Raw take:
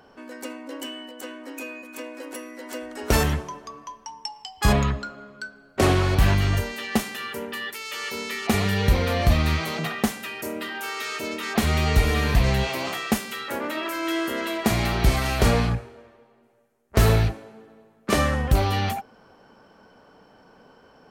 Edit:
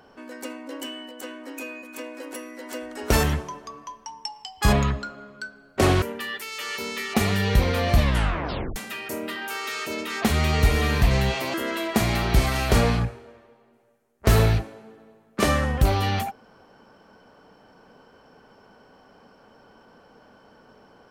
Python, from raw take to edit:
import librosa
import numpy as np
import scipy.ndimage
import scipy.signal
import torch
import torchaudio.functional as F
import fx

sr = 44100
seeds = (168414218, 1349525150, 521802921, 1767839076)

y = fx.edit(x, sr, fx.cut(start_s=6.02, length_s=1.33),
    fx.tape_stop(start_s=9.31, length_s=0.78),
    fx.cut(start_s=12.87, length_s=1.37), tone=tone)